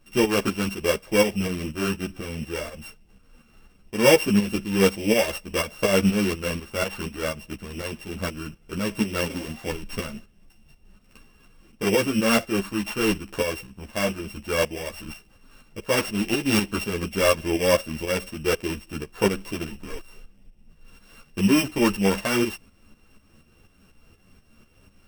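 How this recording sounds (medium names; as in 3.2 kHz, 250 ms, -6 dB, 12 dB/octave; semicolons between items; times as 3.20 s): a buzz of ramps at a fixed pitch in blocks of 16 samples; tremolo saw up 4.1 Hz, depth 65%; a shimmering, thickened sound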